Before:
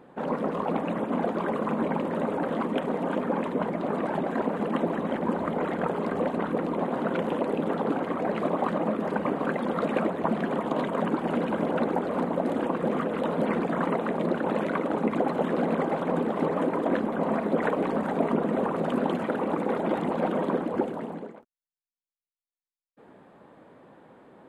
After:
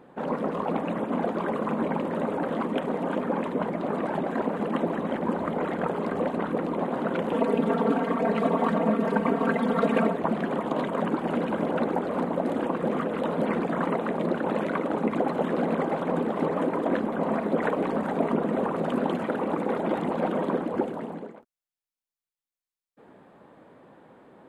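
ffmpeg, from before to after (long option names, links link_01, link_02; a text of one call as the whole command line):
ffmpeg -i in.wav -filter_complex "[0:a]asettb=1/sr,asplit=3[link_01][link_02][link_03];[link_01]atrim=end=7.334[link_04];[link_02]atrim=start=7.33:end=10.17,asetpts=PTS-STARTPTS,afade=type=in:duration=0.004:curve=qsin,afade=type=out:start_time=2.836:duration=0.004:curve=qsin,aecho=1:1:4.4:0.98,atrim=end_sample=125244[link_05];[link_03]atrim=start=10.166[link_06];[link_04][link_05]acrossfade=duration=0.004:curve1=hsin:curve2=qsin[link_07];[link_07][link_06]acrossfade=duration=0.004:curve1=qsin:curve2=hsin" out.wav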